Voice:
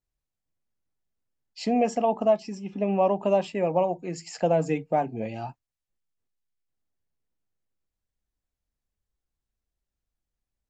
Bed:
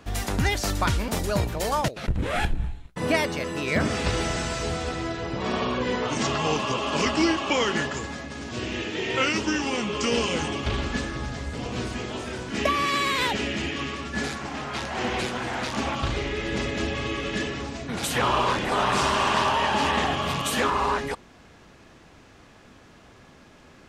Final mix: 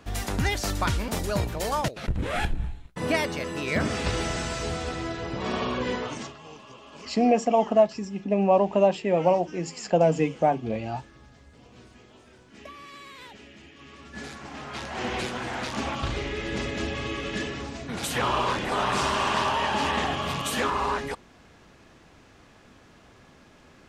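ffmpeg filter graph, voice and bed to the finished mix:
-filter_complex "[0:a]adelay=5500,volume=2.5dB[a];[1:a]volume=16dB,afade=t=out:st=5.9:d=0.44:silence=0.11885,afade=t=in:st=13.76:d=1.38:silence=0.125893[b];[a][b]amix=inputs=2:normalize=0"

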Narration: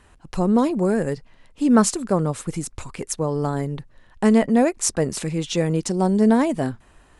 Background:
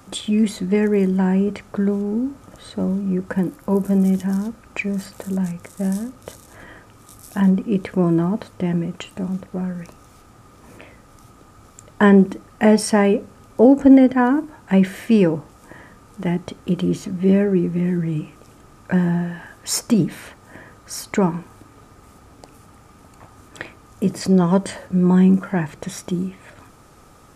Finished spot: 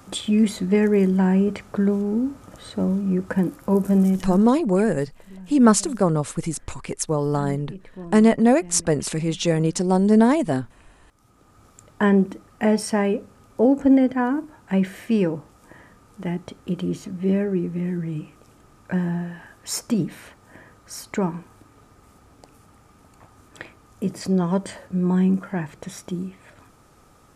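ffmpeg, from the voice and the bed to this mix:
-filter_complex "[0:a]adelay=3900,volume=1dB[a];[1:a]volume=13dB,afade=t=out:st=4:d=0.56:silence=0.11885,afade=t=in:st=11.09:d=0.52:silence=0.211349[b];[a][b]amix=inputs=2:normalize=0"

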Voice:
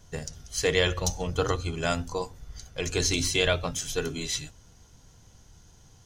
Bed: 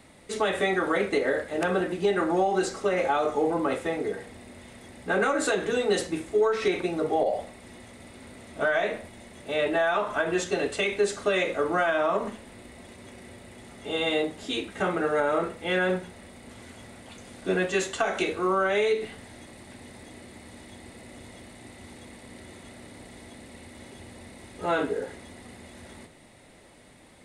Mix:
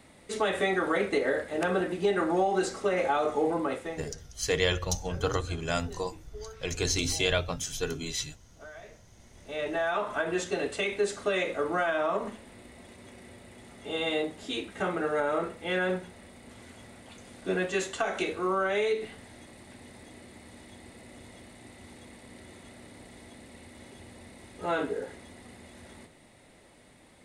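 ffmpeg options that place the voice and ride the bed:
-filter_complex "[0:a]adelay=3850,volume=-2.5dB[a];[1:a]volume=16.5dB,afade=t=out:st=3.51:d=0.72:silence=0.1,afade=t=in:st=9.02:d=0.98:silence=0.11885[b];[a][b]amix=inputs=2:normalize=0"

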